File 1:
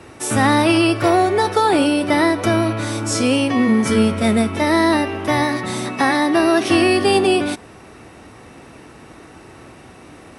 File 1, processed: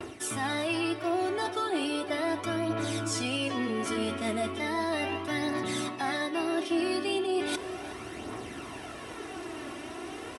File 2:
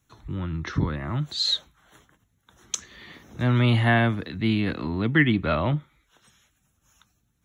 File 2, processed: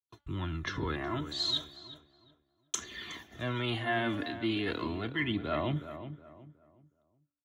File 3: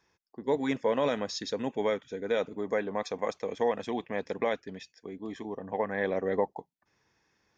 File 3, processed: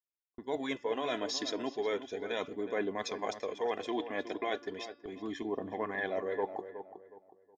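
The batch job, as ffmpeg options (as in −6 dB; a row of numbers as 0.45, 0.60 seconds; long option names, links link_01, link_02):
-filter_complex "[0:a]highpass=frequency=170:poles=1,agate=range=-39dB:threshold=-50dB:ratio=16:detection=peak,aecho=1:1:2.9:0.43,aphaser=in_gain=1:out_gain=1:delay=3.6:decay=0.45:speed=0.36:type=triangular,equalizer=frequency=3200:width=4.2:gain=5.5,areverse,acompressor=threshold=-31dB:ratio=4,areverse,bandreject=frequency=288:width_type=h:width=4,bandreject=frequency=576:width_type=h:width=4,bandreject=frequency=864:width_type=h:width=4,bandreject=frequency=1152:width_type=h:width=4,bandreject=frequency=1440:width_type=h:width=4,bandreject=frequency=1728:width_type=h:width=4,bandreject=frequency=2016:width_type=h:width=4,bandreject=frequency=2304:width_type=h:width=4,bandreject=frequency=2592:width_type=h:width=4,bandreject=frequency=2880:width_type=h:width=4,bandreject=frequency=3168:width_type=h:width=4,bandreject=frequency=3456:width_type=h:width=4,bandreject=frequency=3744:width_type=h:width=4,bandreject=frequency=4032:width_type=h:width=4,bandreject=frequency=4320:width_type=h:width=4,bandreject=frequency=4608:width_type=h:width=4,bandreject=frequency=4896:width_type=h:width=4,bandreject=frequency=5184:width_type=h:width=4,asplit=2[link_01][link_02];[link_02]adelay=367,lowpass=frequency=1700:poles=1,volume=-10.5dB,asplit=2[link_03][link_04];[link_04]adelay=367,lowpass=frequency=1700:poles=1,volume=0.33,asplit=2[link_05][link_06];[link_06]adelay=367,lowpass=frequency=1700:poles=1,volume=0.33,asplit=2[link_07][link_08];[link_08]adelay=367,lowpass=frequency=1700:poles=1,volume=0.33[link_09];[link_03][link_05][link_07][link_09]amix=inputs=4:normalize=0[link_10];[link_01][link_10]amix=inputs=2:normalize=0"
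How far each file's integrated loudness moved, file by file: −15.0, −9.5, −4.5 LU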